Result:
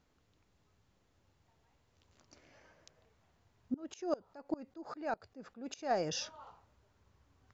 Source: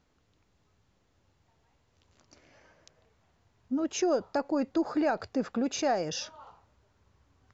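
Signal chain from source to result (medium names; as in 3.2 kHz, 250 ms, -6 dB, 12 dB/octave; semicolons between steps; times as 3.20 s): 3.74–5.91 s: sawtooth tremolo in dB swelling 5 Hz, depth 25 dB; trim -3 dB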